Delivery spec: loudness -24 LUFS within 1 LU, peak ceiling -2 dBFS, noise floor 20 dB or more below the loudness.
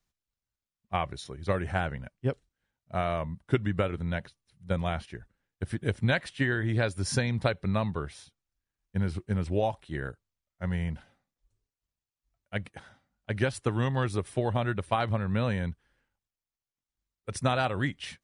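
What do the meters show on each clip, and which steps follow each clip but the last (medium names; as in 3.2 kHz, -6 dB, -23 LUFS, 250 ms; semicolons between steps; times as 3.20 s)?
loudness -31.0 LUFS; peak level -10.0 dBFS; loudness target -24.0 LUFS
-> trim +7 dB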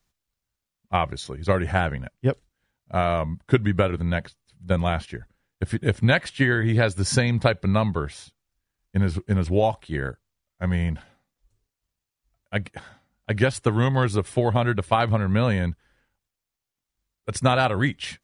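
loudness -24.0 LUFS; peak level -3.0 dBFS; noise floor -86 dBFS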